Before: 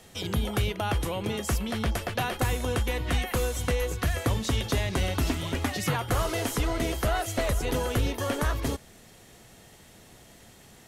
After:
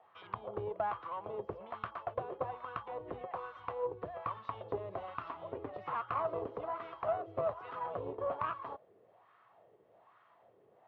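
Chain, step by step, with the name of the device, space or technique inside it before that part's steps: wah-wah guitar rig (wah-wah 1.2 Hz 420–1300 Hz, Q 3.5; valve stage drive 28 dB, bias 0.75; cabinet simulation 82–3500 Hz, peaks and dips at 110 Hz +9 dB, 240 Hz -7 dB, 640 Hz +3 dB, 1.1 kHz +8 dB); dynamic bell 2 kHz, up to -5 dB, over -56 dBFS, Q 1.4; trim +2 dB

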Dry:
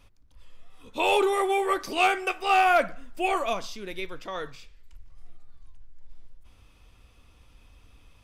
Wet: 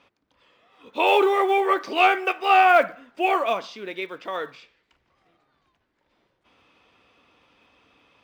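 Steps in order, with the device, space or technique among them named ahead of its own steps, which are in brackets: early digital voice recorder (band-pass 280–3400 Hz; block-companded coder 7-bit); trim +5 dB

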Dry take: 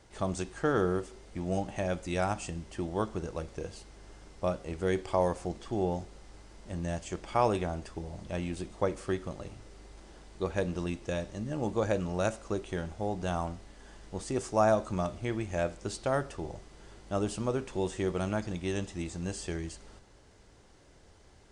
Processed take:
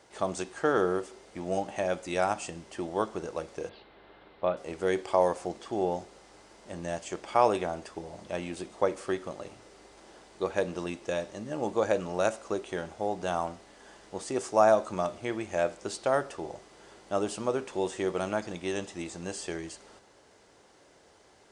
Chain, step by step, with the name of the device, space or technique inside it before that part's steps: filter by subtraction (in parallel: low-pass 560 Hz 12 dB/octave + polarity flip); 3.69–4.57 s: on the sum: elliptic low-pass 3.9 kHz, stop band 50 dB; trim +2 dB

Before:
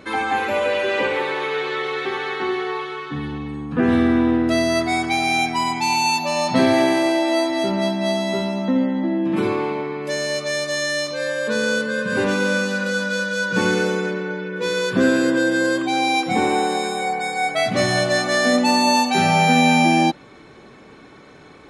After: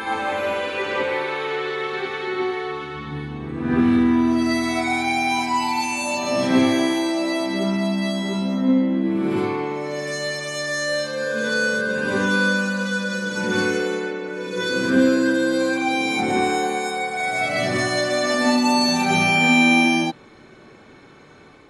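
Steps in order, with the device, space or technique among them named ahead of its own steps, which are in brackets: reverse reverb (reverse; reverberation RT60 1.1 s, pre-delay 27 ms, DRR -1.5 dB; reverse); trim -5.5 dB

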